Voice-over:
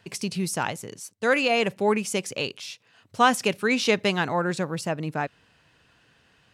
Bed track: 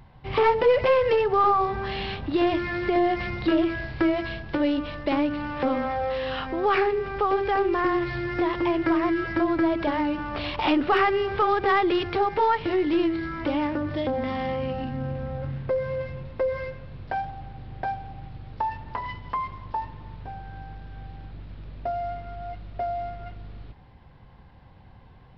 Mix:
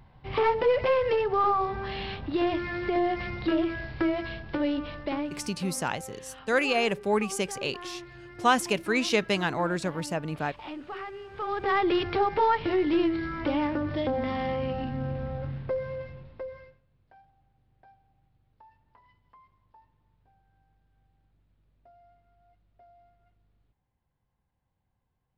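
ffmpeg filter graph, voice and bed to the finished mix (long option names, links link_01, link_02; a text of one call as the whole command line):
ffmpeg -i stem1.wav -i stem2.wav -filter_complex "[0:a]adelay=5250,volume=-3dB[link_01];[1:a]volume=12dB,afade=type=out:start_time=4.91:duration=0.66:silence=0.211349,afade=type=in:start_time=11.31:duration=0.61:silence=0.158489,afade=type=out:start_time=15.25:duration=1.57:silence=0.0446684[link_02];[link_01][link_02]amix=inputs=2:normalize=0" out.wav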